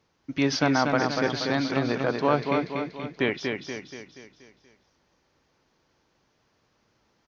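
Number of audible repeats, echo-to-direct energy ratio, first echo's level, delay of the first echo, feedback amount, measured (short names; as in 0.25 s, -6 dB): 6, -3.0 dB, -4.5 dB, 0.239 s, 50%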